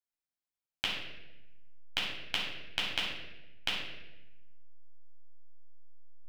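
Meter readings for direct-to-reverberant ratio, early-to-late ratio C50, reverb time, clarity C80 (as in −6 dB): −5.0 dB, 1.5 dB, 0.95 s, 4.5 dB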